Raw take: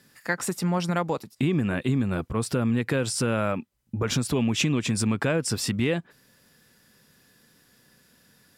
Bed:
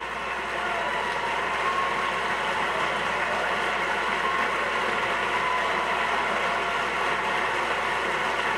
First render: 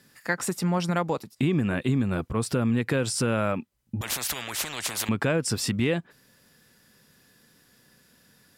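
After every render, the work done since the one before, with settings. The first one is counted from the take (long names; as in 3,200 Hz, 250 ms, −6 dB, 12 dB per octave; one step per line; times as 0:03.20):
0:04.01–0:05.09: every bin compressed towards the loudest bin 10 to 1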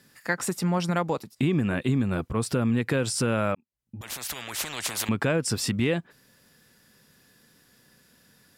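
0:03.55–0:04.74: fade in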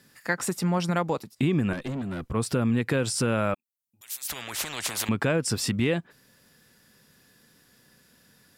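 0:01.73–0:02.30: tube saturation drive 28 dB, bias 0.5
0:03.54–0:04.28: first-order pre-emphasis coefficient 0.97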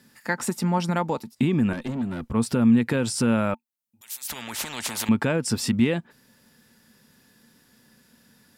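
hollow resonant body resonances 230/890 Hz, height 9 dB, ringing for 75 ms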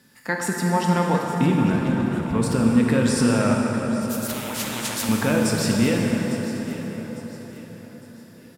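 repeating echo 854 ms, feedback 36%, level −14.5 dB
dense smooth reverb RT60 5 s, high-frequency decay 0.55×, DRR −1.5 dB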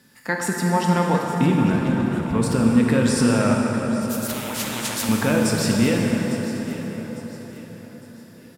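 level +1 dB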